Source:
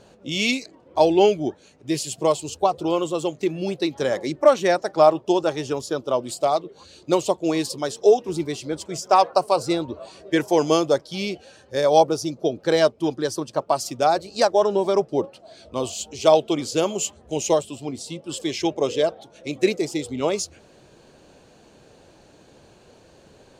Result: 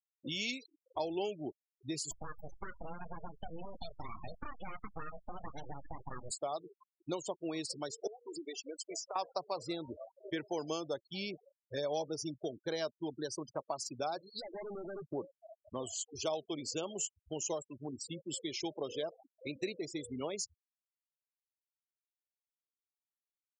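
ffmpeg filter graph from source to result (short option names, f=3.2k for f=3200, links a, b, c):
-filter_complex "[0:a]asettb=1/sr,asplit=3[a][b][c];[a]atrim=end=2.114[d];[b]atrim=start=2.11:end=6.31,asetpts=PTS-STARTPTS,afade=t=in:d=0.004:c=qsin,afade=t=out:st=4.196:d=0.004:c=qsin,acompressor=threshold=-25dB:ratio=8:attack=3.2:release=140:knee=1:detection=peak,asplit=2[e][f];[f]adelay=24,volume=-8dB[g];[e][g]amix=inputs=2:normalize=0,atrim=end_sample=185220,aeval=exprs='abs(val(0))':c=same[h];[c]atrim=start=6.306[i];[d][h]acrossfade=d=0.004:c1=hsin:c2=qsin[j];[j][i]acrossfade=d=0.004:c1=qsin:c2=hsin,asettb=1/sr,asplit=3[k][l][m];[k]atrim=end=8.074[n];[l]atrim=start=8.07:end=9.16,asetpts=PTS-STARTPTS,afade=t=in:d=0.004:c=qsin,afade=t=out:st=1.086:d=0.004:c=qsin,highpass=450,acompressor=threshold=-29dB:ratio=20:attack=3.2:release=140:knee=1:detection=peak[o];[m]atrim=start=9.156[p];[n][o]acrossfade=d=0.004:c1=hsin:c2=qsin[q];[q][p]acrossfade=d=0.004:c1=qsin:c2=hsin,asettb=1/sr,asplit=3[r][s][t];[r]atrim=end=11.334[u];[s]atrim=start=11.33:end=12.41,asetpts=PTS-STARTPTS,afade=t=in:d=0.004:c=qsin,afade=t=out:st=1.076:d=0.004:c=qsin,aecho=1:1:6.7:0.51,atrim=end_sample=47628,acrusher=bits=8:mix=0:aa=0.5[v];[t]atrim=start=12.406[w];[u][v]acrossfade=d=0.004:c1=hsin:c2=qsin[x];[x][w]acrossfade=d=0.004:c1=qsin:c2=hsin,asettb=1/sr,asplit=3[y][z][aa];[y]atrim=end=14.184[ab];[z]atrim=start=14.18:end=15.09,asetpts=PTS-STARTPTS,afade=t=in:d=0.004:c=qsin,afade=t=out:st=0.906:d=0.004:c=qsin,acompressor=threshold=-21dB:ratio=3:attack=3.2:release=140:knee=1:detection=peak,aeval=exprs='(tanh(50.1*val(0)+0.1)-tanh(0.1))/50.1':c=same,adynamicequalizer=threshold=0.00178:dfrequency=3500:dqfactor=0.7:tfrequency=3500:tqfactor=0.7:attack=5:release=100:ratio=0.375:range=4:mode=boostabove:tftype=highshelf[ac];[aa]atrim=start=15.086[ad];[ab][ac]acrossfade=d=0.004:c1=hsin:c2=qsin[ae];[ae][ad]acrossfade=d=0.004:c1=qsin:c2=hsin,afftfilt=real='re*gte(hypot(re,im),0.0355)':imag='im*gte(hypot(re,im),0.0355)':win_size=1024:overlap=0.75,highshelf=f=2.9k:g=8.5,acompressor=threshold=-35dB:ratio=2.5,volume=-6dB"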